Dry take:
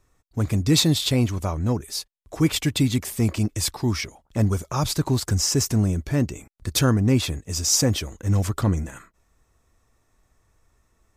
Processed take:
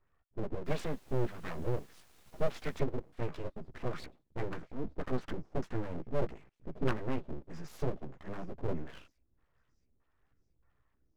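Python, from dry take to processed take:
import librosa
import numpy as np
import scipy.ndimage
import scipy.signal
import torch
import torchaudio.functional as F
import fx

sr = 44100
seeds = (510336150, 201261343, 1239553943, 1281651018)

p1 = fx.filter_lfo_lowpass(x, sr, shape='square', hz=1.6, low_hz=300.0, high_hz=1600.0, q=2.0)
p2 = fx.dmg_noise_colour(p1, sr, seeds[0], colour='pink', level_db=-50.0, at=(0.65, 2.78), fade=0.02)
p3 = fx.chorus_voices(p2, sr, voices=4, hz=0.23, base_ms=15, depth_ms=2.2, mix_pct=45)
p4 = p3 + fx.echo_wet_highpass(p3, sr, ms=677, feedback_pct=50, hz=2700.0, wet_db=-23.5, dry=0)
p5 = np.abs(p4)
y = F.gain(torch.from_numpy(p5), -8.5).numpy()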